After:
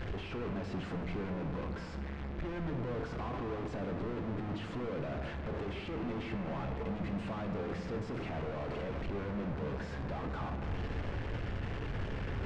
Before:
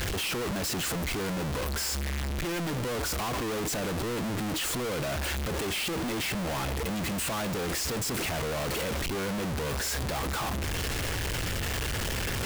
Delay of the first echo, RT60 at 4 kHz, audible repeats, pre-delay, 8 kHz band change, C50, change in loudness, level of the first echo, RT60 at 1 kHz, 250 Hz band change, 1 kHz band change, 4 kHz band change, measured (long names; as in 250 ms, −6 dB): no echo audible, 1.6 s, no echo audible, 3 ms, below −30 dB, 6.5 dB, −8.5 dB, no echo audible, 2.3 s, −4.5 dB, −8.0 dB, −19.0 dB